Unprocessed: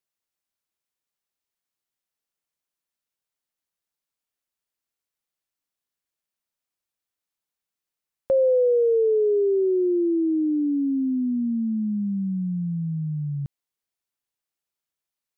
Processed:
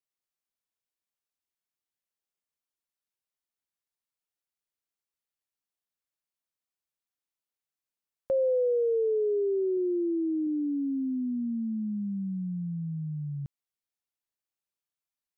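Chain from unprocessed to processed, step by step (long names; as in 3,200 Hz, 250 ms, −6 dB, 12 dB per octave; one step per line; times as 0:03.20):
0:09.77–0:10.47: high-pass filter 56 Hz
level −6.5 dB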